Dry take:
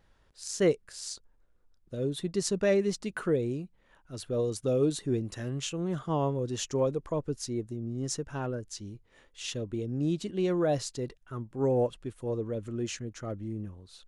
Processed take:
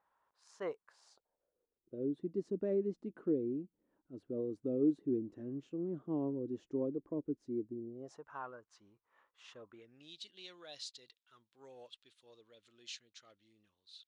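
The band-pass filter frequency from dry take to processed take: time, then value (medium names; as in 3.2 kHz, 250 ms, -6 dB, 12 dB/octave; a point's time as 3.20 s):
band-pass filter, Q 3.3
0.87 s 1 kHz
2.08 s 300 Hz
7.75 s 300 Hz
8.27 s 1.1 kHz
9.66 s 1.1 kHz
10.11 s 3.8 kHz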